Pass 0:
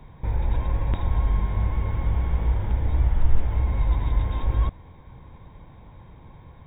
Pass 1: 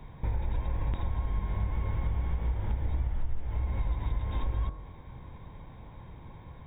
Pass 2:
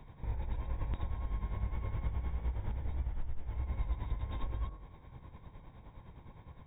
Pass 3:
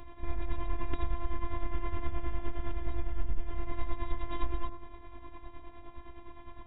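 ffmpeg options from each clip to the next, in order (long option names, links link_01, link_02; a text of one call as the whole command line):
ffmpeg -i in.wav -af "bandreject=frequency=45.8:width_type=h:width=4,bandreject=frequency=91.6:width_type=h:width=4,bandreject=frequency=137.4:width_type=h:width=4,bandreject=frequency=183.2:width_type=h:width=4,bandreject=frequency=229:width_type=h:width=4,bandreject=frequency=274.8:width_type=h:width=4,bandreject=frequency=320.6:width_type=h:width=4,bandreject=frequency=366.4:width_type=h:width=4,bandreject=frequency=412.2:width_type=h:width=4,bandreject=frequency=458:width_type=h:width=4,bandreject=frequency=503.8:width_type=h:width=4,bandreject=frequency=549.6:width_type=h:width=4,bandreject=frequency=595.4:width_type=h:width=4,bandreject=frequency=641.2:width_type=h:width=4,bandreject=frequency=687:width_type=h:width=4,bandreject=frequency=732.8:width_type=h:width=4,bandreject=frequency=778.6:width_type=h:width=4,bandreject=frequency=824.4:width_type=h:width=4,bandreject=frequency=870.2:width_type=h:width=4,bandreject=frequency=916:width_type=h:width=4,bandreject=frequency=961.8:width_type=h:width=4,bandreject=frequency=1007.6:width_type=h:width=4,bandreject=frequency=1053.4:width_type=h:width=4,bandreject=frequency=1099.2:width_type=h:width=4,bandreject=frequency=1145:width_type=h:width=4,bandreject=frequency=1190.8:width_type=h:width=4,bandreject=frequency=1236.6:width_type=h:width=4,bandreject=frequency=1282.4:width_type=h:width=4,bandreject=frequency=1328.2:width_type=h:width=4,bandreject=frequency=1374:width_type=h:width=4,bandreject=frequency=1419.8:width_type=h:width=4,bandreject=frequency=1465.6:width_type=h:width=4,bandreject=frequency=1511.4:width_type=h:width=4,bandreject=frequency=1557.2:width_type=h:width=4,bandreject=frequency=1603:width_type=h:width=4,bandreject=frequency=1648.8:width_type=h:width=4,acompressor=threshold=-26dB:ratio=6" out.wav
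ffmpeg -i in.wav -af "tremolo=f=9.7:d=0.6,volume=-3.5dB" out.wav
ffmpeg -i in.wav -af "aresample=8000,aresample=44100,crystalizer=i=0.5:c=0,afftfilt=real='hypot(re,im)*cos(PI*b)':imag='0':win_size=512:overlap=0.75,volume=11dB" out.wav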